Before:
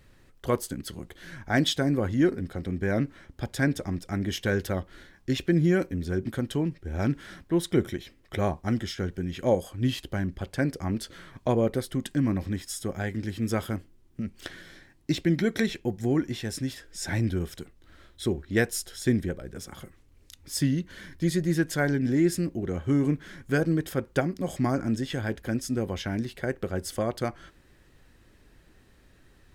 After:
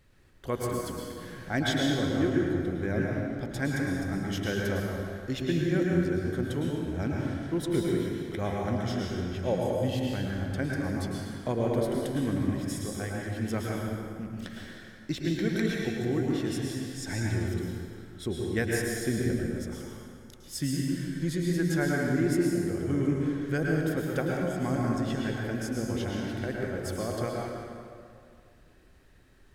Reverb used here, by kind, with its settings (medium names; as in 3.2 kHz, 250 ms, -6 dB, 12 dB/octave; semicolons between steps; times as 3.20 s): plate-style reverb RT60 2.3 s, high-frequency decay 0.65×, pre-delay 95 ms, DRR -2.5 dB; trim -6 dB